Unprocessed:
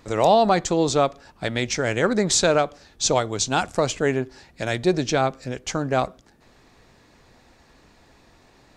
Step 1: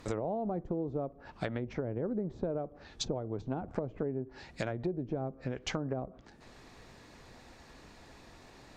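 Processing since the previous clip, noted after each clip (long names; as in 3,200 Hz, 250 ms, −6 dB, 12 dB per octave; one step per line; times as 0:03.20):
treble cut that deepens with the level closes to 470 Hz, closed at −19.5 dBFS
downward compressor 6 to 1, threshold −32 dBFS, peak gain reduction 15 dB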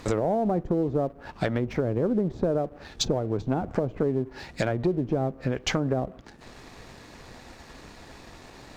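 leveller curve on the samples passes 1
level +6 dB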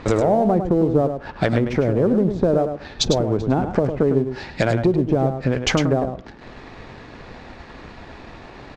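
single-tap delay 104 ms −8 dB
low-pass that shuts in the quiet parts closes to 2,700 Hz, open at −21 dBFS
level +7 dB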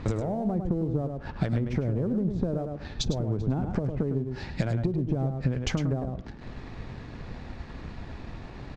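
downward compressor 4 to 1, threshold −24 dBFS, peak gain reduction 10 dB
bass and treble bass +11 dB, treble +2 dB
level −7 dB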